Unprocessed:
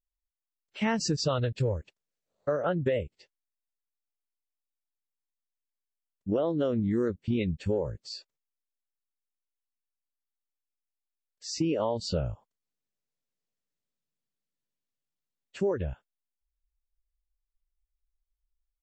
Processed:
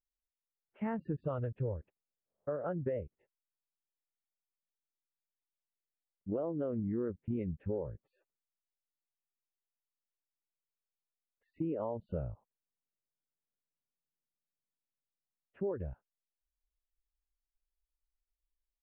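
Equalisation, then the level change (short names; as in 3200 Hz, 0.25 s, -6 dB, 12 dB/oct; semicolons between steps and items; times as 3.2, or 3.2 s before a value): Gaussian blur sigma 5.2 samples; -7.5 dB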